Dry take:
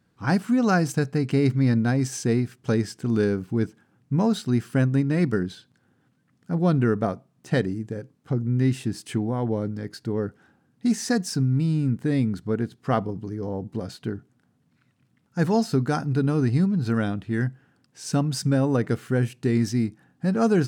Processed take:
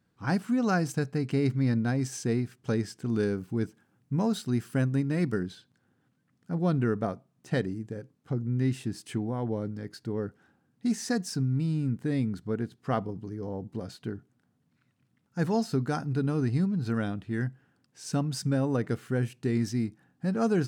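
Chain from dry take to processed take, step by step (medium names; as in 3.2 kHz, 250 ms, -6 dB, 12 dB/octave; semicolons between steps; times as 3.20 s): 3.19–5.48 s: treble shelf 8.3 kHz +6.5 dB; trim -5.5 dB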